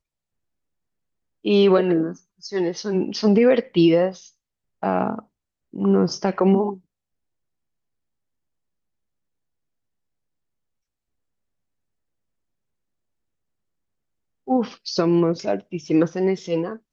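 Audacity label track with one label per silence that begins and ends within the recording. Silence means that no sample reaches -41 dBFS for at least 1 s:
6.770000	14.470000	silence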